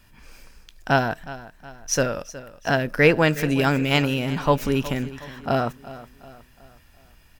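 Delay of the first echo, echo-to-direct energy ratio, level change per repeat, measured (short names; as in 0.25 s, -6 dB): 0.366 s, -15.5 dB, -7.0 dB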